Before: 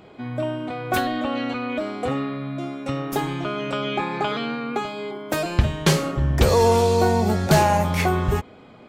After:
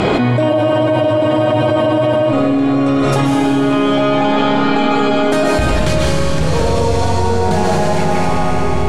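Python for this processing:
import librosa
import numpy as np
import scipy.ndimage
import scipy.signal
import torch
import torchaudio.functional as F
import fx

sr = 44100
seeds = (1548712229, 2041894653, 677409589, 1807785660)

y = fx.tracing_dist(x, sr, depth_ms=0.065)
y = scipy.signal.sosfilt(scipy.signal.butter(6, 11000.0, 'lowpass', fs=sr, output='sos'), y)
y = np.clip(y, -10.0 ** (-8.5 / 20.0), 10.0 ** (-8.5 / 20.0))
y = fx.echo_filtered(y, sr, ms=76, feedback_pct=66, hz=2000.0, wet_db=-11.0)
y = fx.rev_freeverb(y, sr, rt60_s=3.5, hf_ratio=0.95, predelay_ms=105, drr_db=-6.5)
y = fx.spec_freeze(y, sr, seeds[0], at_s=0.5, hold_s=1.83)
y = fx.env_flatten(y, sr, amount_pct=100)
y = y * 10.0 ** (-6.5 / 20.0)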